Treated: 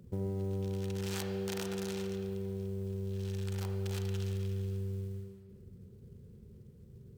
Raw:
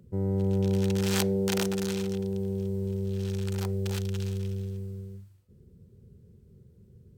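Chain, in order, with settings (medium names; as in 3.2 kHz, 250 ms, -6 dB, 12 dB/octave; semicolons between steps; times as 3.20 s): compression 8:1, threshold -34 dBFS, peak gain reduction 12.5 dB; short-mantissa float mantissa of 4-bit; on a send: reverberation RT60 1.8 s, pre-delay 28 ms, DRR 3.5 dB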